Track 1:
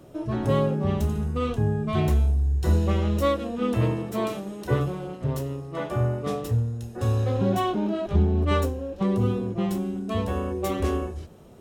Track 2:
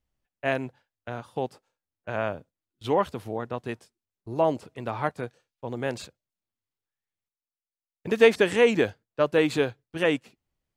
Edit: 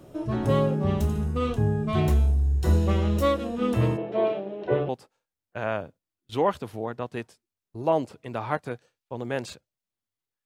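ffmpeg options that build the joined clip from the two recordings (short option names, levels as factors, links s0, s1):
-filter_complex "[0:a]asplit=3[s0][s1][s2];[s0]afade=t=out:st=3.96:d=0.02[s3];[s1]highpass=190,equalizer=f=240:t=q:w=4:g=-9,equalizer=f=400:t=q:w=4:g=5,equalizer=f=630:t=q:w=4:g=8,equalizer=f=1200:t=q:w=4:g=-8,equalizer=f=1900:t=q:w=4:g=-3,lowpass=f=3100:w=0.5412,lowpass=f=3100:w=1.3066,afade=t=in:st=3.96:d=0.02,afade=t=out:st=4.89:d=0.02[s4];[s2]afade=t=in:st=4.89:d=0.02[s5];[s3][s4][s5]amix=inputs=3:normalize=0,apad=whole_dur=10.45,atrim=end=10.45,atrim=end=4.892[s6];[1:a]atrim=start=1.408:end=6.97[s7];[s6][s7]acrossfade=d=0.004:c1=hsin:c2=hsin"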